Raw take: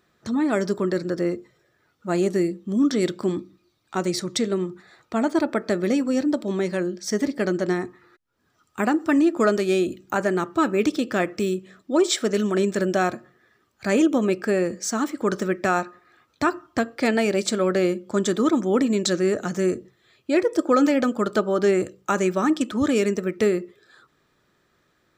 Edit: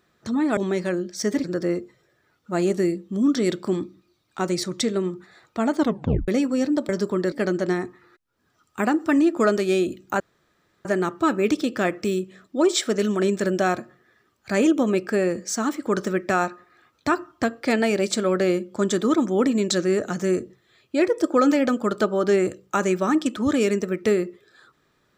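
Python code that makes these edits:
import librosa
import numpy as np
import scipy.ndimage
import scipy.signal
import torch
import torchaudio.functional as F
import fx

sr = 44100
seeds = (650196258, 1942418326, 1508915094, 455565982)

y = fx.edit(x, sr, fx.swap(start_s=0.57, length_s=0.43, other_s=6.45, other_length_s=0.87),
    fx.tape_stop(start_s=5.34, length_s=0.5),
    fx.insert_room_tone(at_s=10.2, length_s=0.65), tone=tone)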